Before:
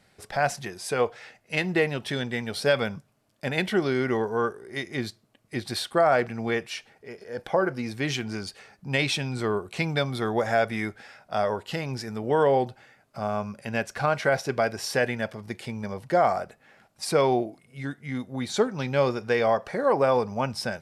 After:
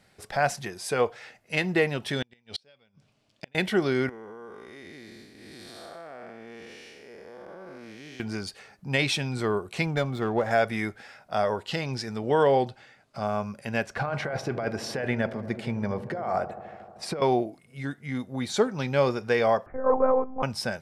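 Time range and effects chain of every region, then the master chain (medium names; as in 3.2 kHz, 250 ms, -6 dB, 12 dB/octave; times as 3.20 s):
2.22–3.55 s: low-pass 5.3 kHz + resonant high shelf 2.1 kHz +6 dB, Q 1.5 + inverted gate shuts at -20 dBFS, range -37 dB
4.09–8.20 s: spectral blur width 338 ms + peaking EQ 120 Hz -10 dB 0.69 oct + compression 4:1, threshold -42 dBFS
9.86–10.51 s: treble shelf 3 kHz -11 dB + sliding maximum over 3 samples
11.65–13.26 s: low-pass 10 kHz + peaking EQ 3.9 kHz +4.5 dB 1.1 oct
13.86–17.22 s: low-pass 2.2 kHz 6 dB/octave + compressor with a negative ratio -28 dBFS + feedback echo behind a low-pass 77 ms, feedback 81%, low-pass 950 Hz, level -13 dB
19.66–20.43 s: low-pass 1.4 kHz 24 dB/octave + monotone LPC vocoder at 8 kHz 260 Hz + three bands expanded up and down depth 40%
whole clip: none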